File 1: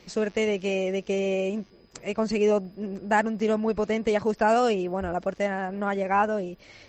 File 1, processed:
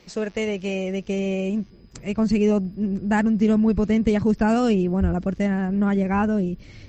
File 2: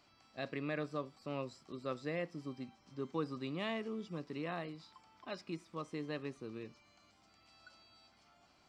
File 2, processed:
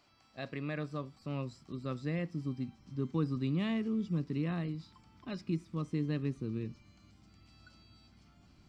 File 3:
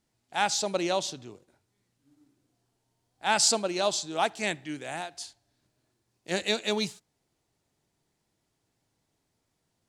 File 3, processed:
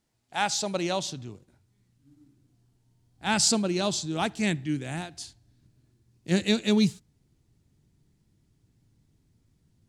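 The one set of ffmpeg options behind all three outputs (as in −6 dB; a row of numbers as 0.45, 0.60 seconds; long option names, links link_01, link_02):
-af "asubboost=boost=8:cutoff=230"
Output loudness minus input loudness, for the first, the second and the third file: +4.0, +5.5, +1.5 LU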